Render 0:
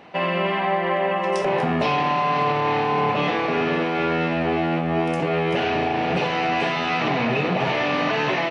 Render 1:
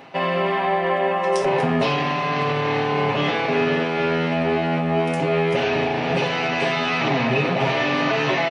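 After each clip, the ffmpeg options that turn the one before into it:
ffmpeg -i in.wav -af "highshelf=frequency=6700:gain=6,aecho=1:1:7.4:0.58,areverse,acompressor=mode=upward:threshold=-23dB:ratio=2.5,areverse" out.wav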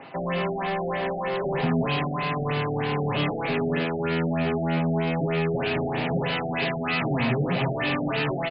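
ffmpeg -i in.wav -filter_complex "[0:a]acrossover=split=250|2300[link_01][link_02][link_03];[link_02]asoftclip=type=tanh:threshold=-27dB[link_04];[link_01][link_04][link_03]amix=inputs=3:normalize=0,afftfilt=real='re*lt(b*sr/1024,760*pow(5300/760,0.5+0.5*sin(2*PI*3.2*pts/sr)))':imag='im*lt(b*sr/1024,760*pow(5300/760,0.5+0.5*sin(2*PI*3.2*pts/sr)))':win_size=1024:overlap=0.75" out.wav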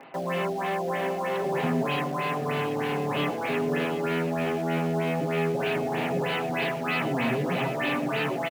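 ffmpeg -i in.wav -filter_complex "[0:a]highpass=180,lowpass=3300,aecho=1:1:733:0.266,asplit=2[link_01][link_02];[link_02]acrusher=bits=5:mix=0:aa=0.000001,volume=-8dB[link_03];[link_01][link_03]amix=inputs=2:normalize=0,volume=-3.5dB" out.wav

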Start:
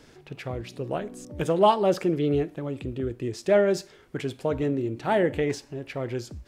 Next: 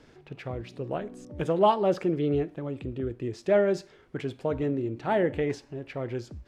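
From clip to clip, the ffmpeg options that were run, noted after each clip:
ffmpeg -i in.wav -af "aemphasis=mode=reproduction:type=50kf,volume=-2dB" out.wav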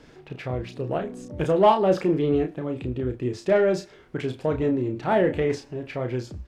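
ffmpeg -i in.wav -filter_complex "[0:a]asplit=2[link_01][link_02];[link_02]asoftclip=type=tanh:threshold=-21dB,volume=-4dB[link_03];[link_01][link_03]amix=inputs=2:normalize=0,asplit=2[link_04][link_05];[link_05]adelay=32,volume=-6dB[link_06];[link_04][link_06]amix=inputs=2:normalize=0" out.wav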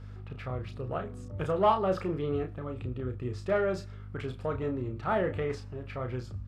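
ffmpeg -i in.wav -af "aeval=exprs='val(0)+0.0126*(sin(2*PI*50*n/s)+sin(2*PI*2*50*n/s)/2+sin(2*PI*3*50*n/s)/3+sin(2*PI*4*50*n/s)/4+sin(2*PI*5*50*n/s)/5)':channel_layout=same,equalizer=frequency=100:width_type=o:width=0.33:gain=10,equalizer=frequency=315:width_type=o:width=0.33:gain=-6,equalizer=frequency=1250:width_type=o:width=0.33:gain=12,equalizer=frequency=6300:width_type=o:width=0.33:gain=-4,volume=-8dB" out.wav

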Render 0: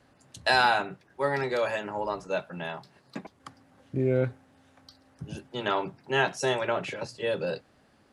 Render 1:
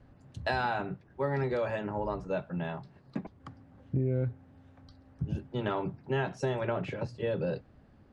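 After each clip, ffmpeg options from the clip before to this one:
ffmpeg -i in.wav -af "aemphasis=mode=reproduction:type=riaa,acompressor=threshold=-23dB:ratio=6,volume=-3.5dB" out.wav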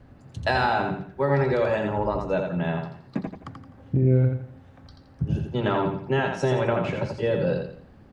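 ffmpeg -i in.wav -af "aecho=1:1:85|170|255|340:0.562|0.197|0.0689|0.0241,volume=7dB" out.wav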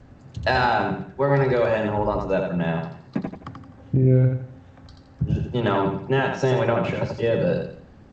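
ffmpeg -i in.wav -af "volume=2.5dB" -ar 16000 -c:a g722 out.g722

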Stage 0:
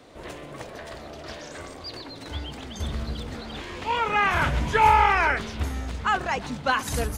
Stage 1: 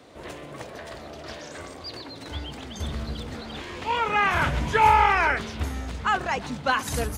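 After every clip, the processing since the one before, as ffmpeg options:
ffmpeg -i in.wav -af "highpass=52" out.wav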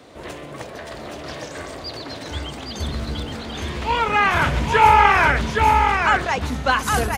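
ffmpeg -i in.wav -af "aecho=1:1:818:0.668,volume=4.5dB" out.wav

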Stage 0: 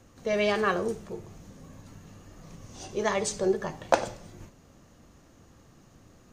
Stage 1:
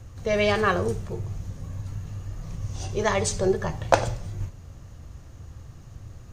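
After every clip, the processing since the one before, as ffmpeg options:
ffmpeg -i in.wav -af "lowshelf=frequency=150:width_type=q:width=1.5:gain=12,volume=4dB" out.wav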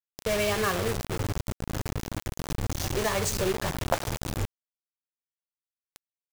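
ffmpeg -i in.wav -af "acompressor=threshold=-26dB:ratio=2.5,acrusher=bits=4:mix=0:aa=0.000001" out.wav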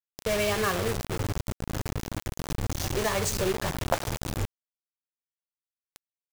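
ffmpeg -i in.wav -af anull out.wav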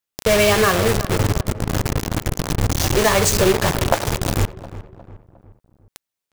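ffmpeg -i in.wav -filter_complex "[0:a]asplit=2[link_01][link_02];[link_02]alimiter=limit=-17.5dB:level=0:latency=1:release=340,volume=0.5dB[link_03];[link_01][link_03]amix=inputs=2:normalize=0,asplit=2[link_04][link_05];[link_05]adelay=357,lowpass=frequency=1500:poles=1,volume=-14.5dB,asplit=2[link_06][link_07];[link_07]adelay=357,lowpass=frequency=1500:poles=1,volume=0.48,asplit=2[link_08][link_09];[link_09]adelay=357,lowpass=frequency=1500:poles=1,volume=0.48,asplit=2[link_10][link_11];[link_11]adelay=357,lowpass=frequency=1500:poles=1,volume=0.48[link_12];[link_04][link_06][link_08][link_10][link_12]amix=inputs=5:normalize=0,volume=5dB" out.wav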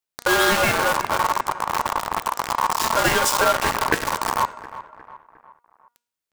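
ffmpeg -i in.wav -af "aeval=exprs='val(0)*sin(2*PI*1000*n/s)':channel_layout=same,bandreject=frequency=238.6:width_type=h:width=4,bandreject=frequency=477.2:width_type=h:width=4,bandreject=frequency=715.8:width_type=h:width=4,bandreject=frequency=954.4:width_type=h:width=4,bandreject=frequency=1193:width_type=h:width=4,bandreject=frequency=1431.6:width_type=h:width=4,bandreject=frequency=1670.2:width_type=h:width=4,bandreject=frequency=1908.8:width_type=h:width=4,bandreject=frequency=2147.4:width_type=h:width=4,bandreject=frequency=2386:width_type=h:width=4,bandreject=frequency=2624.6:width_type=h:width=4,bandreject=frequency=2863.2:width_type=h:width=4,bandreject=frequency=3101.8:width_type=h:width=4,bandreject=frequency=3340.4:width_type=h:width=4,bandreject=frequency=3579:width_type=h:width=4,bandreject=frequency=3817.6:width_type=h:width=4,bandreject=frequency=4056.2:width_type=h:width=4,bandreject=frequency=4294.8:width_type=h:width=4,bandreject=frequency=4533.4:width_type=h:width=4,bandreject=frequency=4772:width_type=h:width=4,bandreject=frequency=5010.6:width_type=h:width=4,bandreject=frequency=5249.2:width_type=h:width=4,bandreject=frequency=5487.8:width_type=h:width=4,bandreject=frequency=5726.4:width_type=h:width=4,bandreject=frequency=5965:width_type=h:width=4,bandreject=frequency=6203.6:width_type=h:width=4,bandreject=frequency=6442.2:width_type=h:width=4,bandreject=frequency=6680.8:width_type=h:width=4,bandreject=frequency=6919.4:width_type=h:width=4,bandreject=frequency=7158:width_type=h:width=4,bandreject=frequency=7396.6:width_type=h:width=4,bandreject=frequency=7635.2:width_type=h:width=4,bandreject=frequency=7873.8:width_type=h:width=4,bandreject=frequency=8112.4:width_type=h:width=4,bandreject=frequency=8351:width_type=h:width=4,bandreject=frequency=8589.6:width_type=h:width=4,bandreject=frequency=8828.2:width_type=h:width=4,bandreject=frequency=9066.8:width_type=h:width=4" out.wav

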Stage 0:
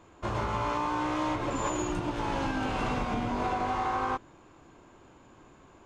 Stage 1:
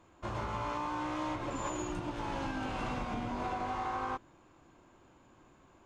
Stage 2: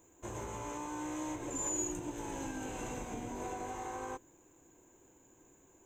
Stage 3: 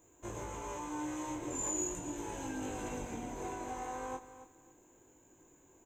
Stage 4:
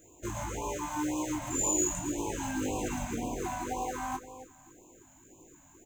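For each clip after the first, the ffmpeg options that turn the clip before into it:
ffmpeg -i in.wav -af "bandreject=frequency=430:width=12,volume=-6dB" out.wav
ffmpeg -i in.wav -af "superequalizer=6b=1.78:7b=2.24:10b=0.501:14b=0.251:16b=0.282,aexciter=amount=10.4:drive=3.9:freq=5400,volume=-6dB" out.wav
ffmpeg -i in.wav -af "flanger=delay=19.5:depth=4.3:speed=0.39,aecho=1:1:274|548|822:0.211|0.0528|0.0132,volume=2.5dB" out.wav
ffmpeg -i in.wav -af "acrusher=bits=5:mode=log:mix=0:aa=0.000001,afftfilt=real='re*(1-between(b*sr/1024,370*pow(1700/370,0.5+0.5*sin(2*PI*1.9*pts/sr))/1.41,370*pow(1700/370,0.5+0.5*sin(2*PI*1.9*pts/sr))*1.41))':imag='im*(1-between(b*sr/1024,370*pow(1700/370,0.5+0.5*sin(2*PI*1.9*pts/sr))/1.41,370*pow(1700/370,0.5+0.5*sin(2*PI*1.9*pts/sr))*1.41))':win_size=1024:overlap=0.75,volume=7.5dB" out.wav

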